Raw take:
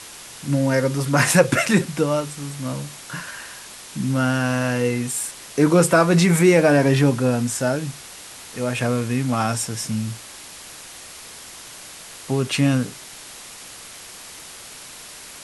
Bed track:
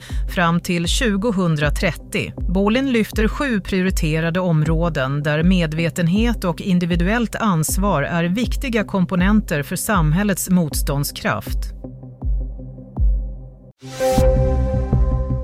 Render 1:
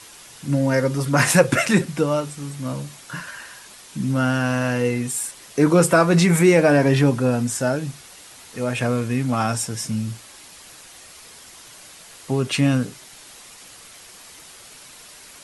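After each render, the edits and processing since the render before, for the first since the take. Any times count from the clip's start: denoiser 6 dB, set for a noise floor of -40 dBFS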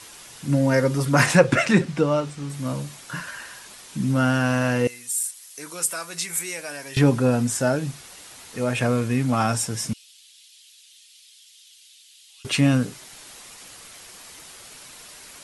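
1.26–2.5 air absorption 67 m; 4.87–6.97 pre-emphasis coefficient 0.97; 9.93–12.45 ladder high-pass 2800 Hz, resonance 50%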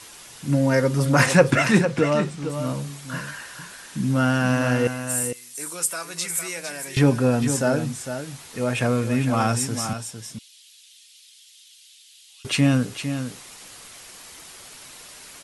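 echo 0.455 s -9 dB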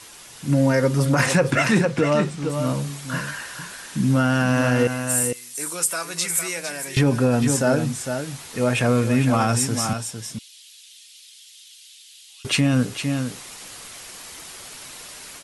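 AGC gain up to 4 dB; limiter -8.5 dBFS, peak gain reduction 6.5 dB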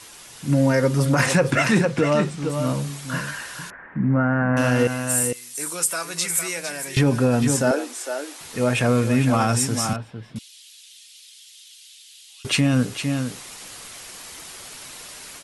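3.7–4.57 elliptic low-pass 2000 Hz, stop band 60 dB; 7.71–8.41 elliptic high-pass 310 Hz, stop band 50 dB; 9.96–10.36 air absorption 430 m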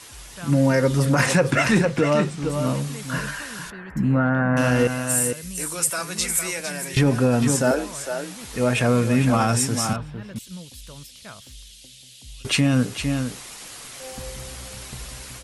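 add bed track -22 dB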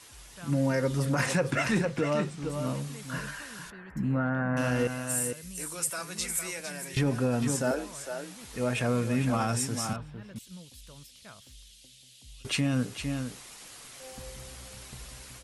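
gain -8.5 dB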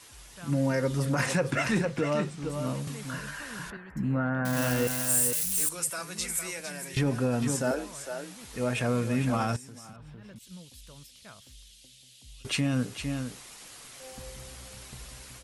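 2.87–3.77 three-band squash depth 100%; 4.45–5.69 switching spikes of -23 dBFS; 9.56–10.51 compressor 16:1, threshold -42 dBFS

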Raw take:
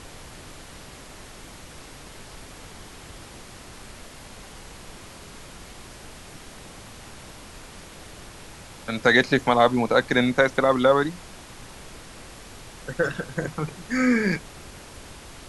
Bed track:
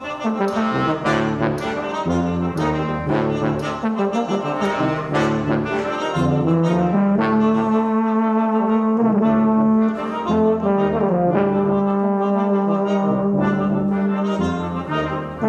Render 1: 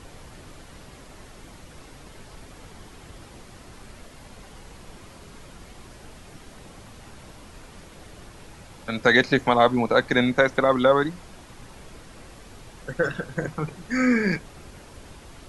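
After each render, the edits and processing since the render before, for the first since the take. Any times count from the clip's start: denoiser 6 dB, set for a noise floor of -44 dBFS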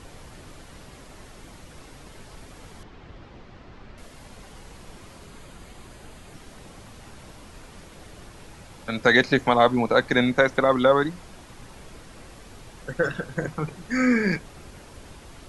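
2.83–3.98 air absorption 200 m; 5.26–6.34 notch 5500 Hz, Q 7.7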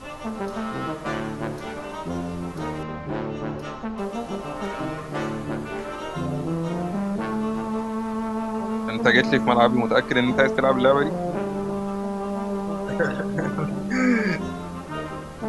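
add bed track -9.5 dB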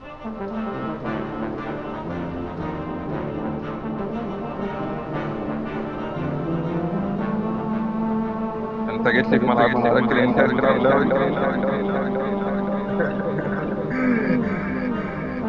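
air absorption 260 m; echo with dull and thin repeats by turns 0.261 s, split 950 Hz, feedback 81%, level -2.5 dB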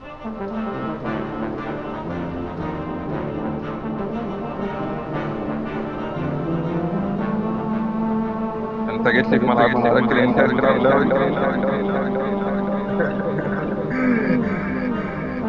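gain +1.5 dB; limiter -3 dBFS, peak gain reduction 1.5 dB

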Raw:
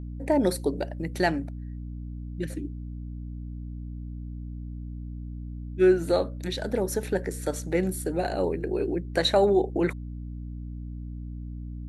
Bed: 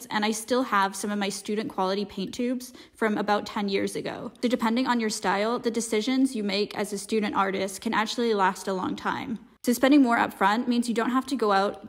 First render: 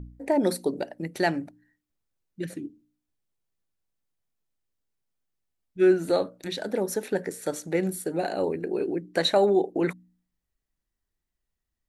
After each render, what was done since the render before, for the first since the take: de-hum 60 Hz, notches 5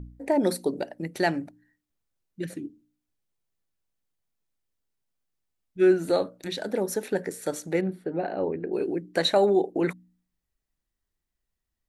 7.81–8.73 air absorption 430 m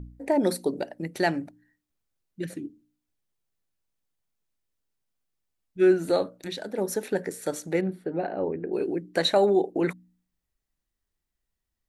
6.35–6.78 fade out, to -6 dB; 8.27–8.69 air absorption 240 m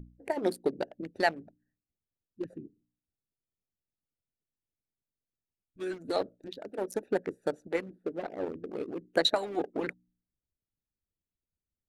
Wiener smoothing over 41 samples; harmonic-percussive split harmonic -17 dB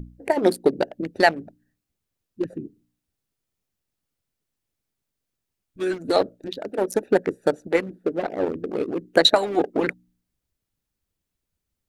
gain +10.5 dB; limiter -3 dBFS, peak gain reduction 1.5 dB

